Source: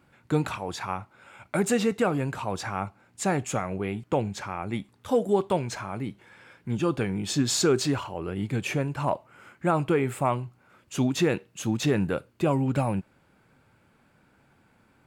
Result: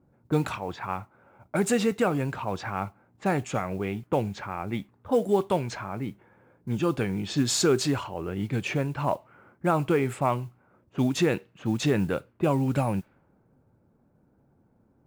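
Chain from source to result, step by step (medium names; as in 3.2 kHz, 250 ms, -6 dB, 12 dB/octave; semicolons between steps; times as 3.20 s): level-controlled noise filter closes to 570 Hz, open at -22.5 dBFS; modulation noise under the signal 31 dB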